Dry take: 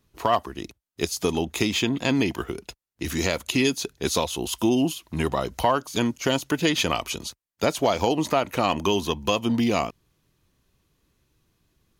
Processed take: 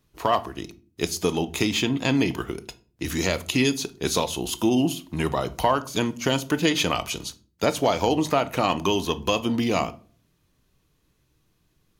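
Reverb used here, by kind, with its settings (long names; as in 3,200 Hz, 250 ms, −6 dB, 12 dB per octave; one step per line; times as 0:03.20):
rectangular room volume 340 cubic metres, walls furnished, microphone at 0.49 metres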